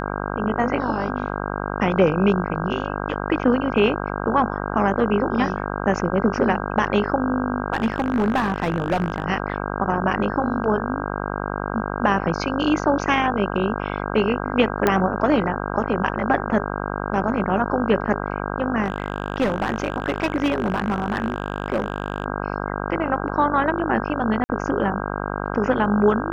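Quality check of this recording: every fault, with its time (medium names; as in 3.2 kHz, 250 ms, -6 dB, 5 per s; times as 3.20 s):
buzz 50 Hz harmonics 32 -27 dBFS
7.72–9.24 s: clipped -15 dBFS
14.87 s: pop -5 dBFS
18.84–22.26 s: clipped -15.5 dBFS
24.44–24.49 s: dropout 50 ms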